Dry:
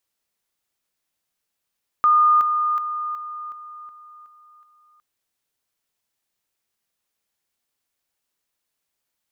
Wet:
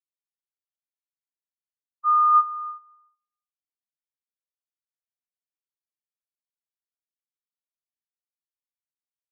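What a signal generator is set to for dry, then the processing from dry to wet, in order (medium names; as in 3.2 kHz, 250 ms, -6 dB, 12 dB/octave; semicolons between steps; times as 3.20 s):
level ladder 1.22 kHz -12 dBFS, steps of -6 dB, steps 8, 0.37 s 0.00 s
thinning echo 304 ms, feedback 54%, high-pass 210 Hz, level -12 dB; spectral contrast expander 4:1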